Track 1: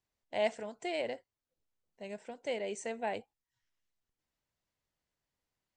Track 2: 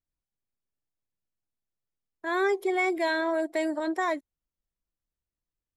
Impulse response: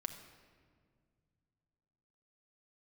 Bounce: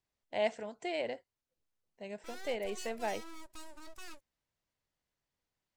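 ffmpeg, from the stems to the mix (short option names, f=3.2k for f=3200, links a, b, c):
-filter_complex "[0:a]lowpass=7.7k,volume=-0.5dB[a];[1:a]aeval=exprs='abs(val(0))':c=same,bass=f=250:g=2,treble=f=4k:g=13,asoftclip=type=tanh:threshold=-19dB,volume=-18.5dB[b];[a][b]amix=inputs=2:normalize=0"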